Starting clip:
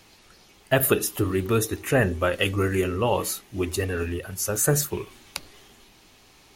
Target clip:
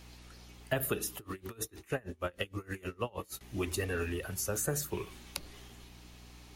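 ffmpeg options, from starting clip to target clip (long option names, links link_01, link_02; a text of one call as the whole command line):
ffmpeg -i in.wav -filter_complex "[0:a]acrossover=split=250|540[link_01][link_02][link_03];[link_01]acompressor=threshold=-35dB:ratio=4[link_04];[link_02]acompressor=threshold=-36dB:ratio=4[link_05];[link_03]acompressor=threshold=-31dB:ratio=4[link_06];[link_04][link_05][link_06]amix=inputs=3:normalize=0,aeval=exprs='val(0)+0.00316*(sin(2*PI*60*n/s)+sin(2*PI*2*60*n/s)/2+sin(2*PI*3*60*n/s)/3+sin(2*PI*4*60*n/s)/4+sin(2*PI*5*60*n/s)/5)':channel_layout=same,asettb=1/sr,asplit=3[link_07][link_08][link_09];[link_07]atrim=end=1.164[link_10];[link_08]atrim=start=1.16:end=3.41,asetpts=PTS-STARTPTS,afade=type=in:duration=0.004:curve=qsin,afade=type=out:start_time=2.246:duration=0.004:curve=qsin,aeval=exprs='val(0)*pow(10,-28*(0.5-0.5*cos(2*PI*6.4*n/s))/20)':channel_layout=same[link_11];[link_09]atrim=start=3.406[link_12];[link_10][link_11]acrossfade=duration=0.004:curve1=hsin:curve2=qsin[link_13];[link_13][link_12]acrossfade=duration=0.004:curve1=qsin:curve2=hsin,volume=-3dB" out.wav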